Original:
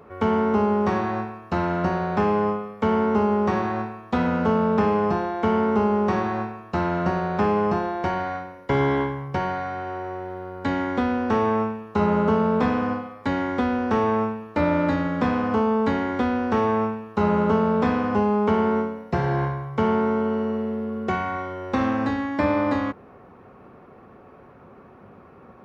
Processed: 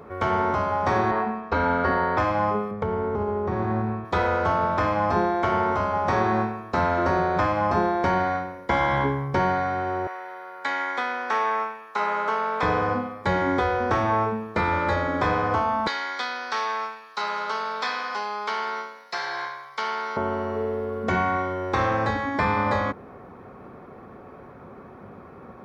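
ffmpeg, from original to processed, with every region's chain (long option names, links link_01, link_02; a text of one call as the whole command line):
ffmpeg -i in.wav -filter_complex "[0:a]asettb=1/sr,asplit=3[link_01][link_02][link_03];[link_01]atrim=end=1.114[link_04];[link_02]atrim=start=1.11:end=2.18,asetpts=PTS-STARTPTS,afade=type=in:duration=0.004:curve=qsin,afade=type=out:start_time=1.066:duration=0.004:curve=qsin,lowpass=3300,aecho=1:1:4.3:0.94,atrim=end_sample=47187[link_05];[link_03]atrim=start=2.176[link_06];[link_04][link_05]acrossfade=duration=0.004:curve1=hsin:curve2=qsin[link_07];[link_07][link_06]acrossfade=duration=0.004:curve1=qsin:curve2=hsin,asettb=1/sr,asplit=3[link_08][link_09][link_10];[link_08]atrim=end=2.714[link_11];[link_09]atrim=start=2.71:end=4.05,asetpts=PTS-STARTPTS,afade=type=in:duration=0.004:curve=qsin,afade=type=out:start_time=1.336:duration=0.004:curve=qsin,lowpass=frequency=2200:poles=1,lowshelf=frequency=220:gain=12,acompressor=threshold=-25dB:ratio=4:attack=3.2:release=140:knee=1:detection=peak[link_12];[link_10]atrim=start=4.046[link_13];[link_11][link_12]acrossfade=duration=0.004:curve1=hsin:curve2=qsin[link_14];[link_14][link_13]acrossfade=duration=0.004:curve1=qsin:curve2=hsin,asettb=1/sr,asplit=3[link_15][link_16][link_17];[link_15]atrim=end=10.074[link_18];[link_16]atrim=start=10.07:end=12.63,asetpts=PTS-STARTPTS,afade=type=in:duration=0.004:curve=qsin,afade=type=out:start_time=2.556:duration=0.004:curve=qsin,highpass=950,equalizer=frequency=2100:width_type=o:width=0.83:gain=3[link_19];[link_17]atrim=start=12.626[link_20];[link_18][link_19]acrossfade=duration=0.004:curve1=hsin:curve2=qsin[link_21];[link_21][link_20]acrossfade=duration=0.004:curve1=qsin:curve2=hsin,asettb=1/sr,asplit=3[link_22][link_23][link_24];[link_22]atrim=end=15.874[link_25];[link_23]atrim=start=15.87:end=20.17,asetpts=PTS-STARTPTS,afade=type=in:duration=0.004:curve=qsin,afade=type=out:start_time=4.296:duration=0.004:curve=qsin,highpass=1300,equalizer=frequency=4500:width_type=o:width=0.75:gain=12.5[link_26];[link_24]atrim=start=20.166[link_27];[link_25][link_26]acrossfade=duration=0.004:curve1=hsin:curve2=qsin[link_28];[link_28][link_27]acrossfade=duration=0.004:curve1=qsin:curve2=hsin,afftfilt=real='re*lt(hypot(re,im),0.398)':imag='im*lt(hypot(re,im),0.398)':win_size=1024:overlap=0.75,bandreject=frequency=2800:width=7,volume=4dB" out.wav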